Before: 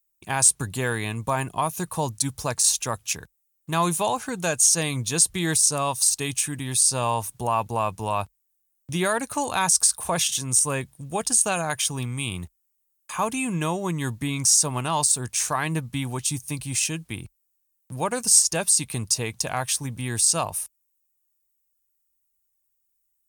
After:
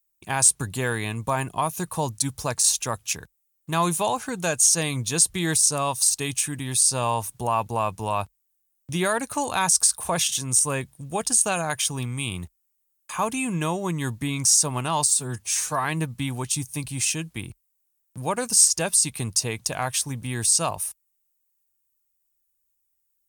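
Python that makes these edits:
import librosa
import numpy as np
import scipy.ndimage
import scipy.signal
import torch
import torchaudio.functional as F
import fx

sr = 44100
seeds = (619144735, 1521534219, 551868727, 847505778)

y = fx.edit(x, sr, fx.stretch_span(start_s=15.08, length_s=0.51, factor=1.5), tone=tone)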